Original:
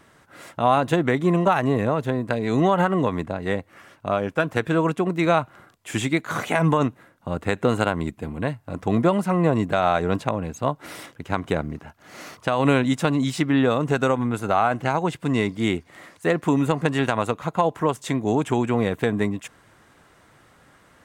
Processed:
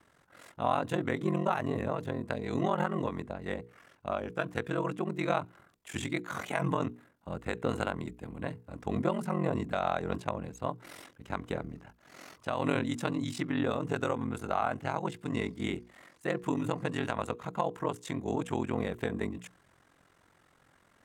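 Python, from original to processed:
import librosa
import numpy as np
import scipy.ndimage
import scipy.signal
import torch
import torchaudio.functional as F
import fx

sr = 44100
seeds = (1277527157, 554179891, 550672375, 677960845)

y = x * np.sin(2.0 * np.pi * 22.0 * np.arange(len(x)) / sr)
y = fx.hum_notches(y, sr, base_hz=60, count=8)
y = F.gain(torch.from_numpy(y), -7.5).numpy()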